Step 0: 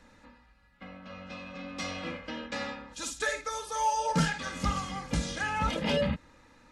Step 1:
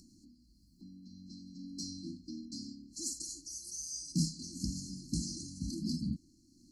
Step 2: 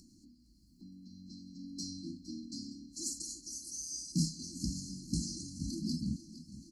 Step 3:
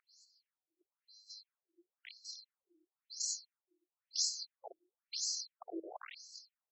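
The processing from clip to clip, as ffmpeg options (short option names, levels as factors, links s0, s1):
-af "afftfilt=real='re*(1-between(b*sr/4096,360,4100))':imag='im*(1-between(b*sr/4096,360,4100))':win_size=4096:overlap=0.75,lowshelf=f=120:g=-12,acompressor=mode=upward:threshold=0.00178:ratio=2.5"
-af "aecho=1:1:462|924|1386|1848|2310|2772:0.178|0.103|0.0598|0.0347|0.0201|0.0117"
-filter_complex "[0:a]acrossover=split=250|630|3100[s0][s1][s2][s3];[s1]acrusher=bits=6:mix=0:aa=0.000001[s4];[s0][s4][s2][s3]amix=inputs=4:normalize=0,afftfilt=real='re*between(b*sr/1024,430*pow(5800/430,0.5+0.5*sin(2*PI*0.99*pts/sr))/1.41,430*pow(5800/430,0.5+0.5*sin(2*PI*0.99*pts/sr))*1.41)':imag='im*between(b*sr/1024,430*pow(5800/430,0.5+0.5*sin(2*PI*0.99*pts/sr))/1.41,430*pow(5800/430,0.5+0.5*sin(2*PI*0.99*pts/sr))*1.41)':win_size=1024:overlap=0.75,volume=2.11"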